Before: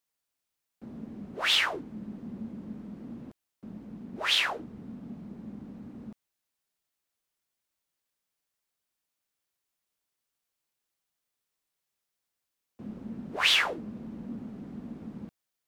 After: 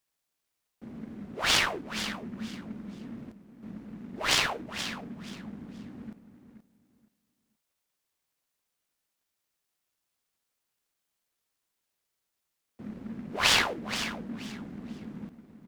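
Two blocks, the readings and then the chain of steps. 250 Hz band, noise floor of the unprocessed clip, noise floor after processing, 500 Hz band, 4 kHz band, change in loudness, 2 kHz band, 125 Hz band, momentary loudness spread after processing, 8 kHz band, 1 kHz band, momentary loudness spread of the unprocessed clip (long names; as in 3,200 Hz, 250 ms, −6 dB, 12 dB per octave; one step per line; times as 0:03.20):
+1.0 dB, −85 dBFS, −83 dBFS, +2.5 dB, −1.0 dB, −0.5 dB, +0.5 dB, +2.0 dB, 21 LU, +7.5 dB, +3.0 dB, 21 LU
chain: high-shelf EQ 10,000 Hz +7 dB
on a send: repeating echo 477 ms, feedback 23%, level −10.5 dB
on the sum: short delay modulated by noise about 1,400 Hz, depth 0.048 ms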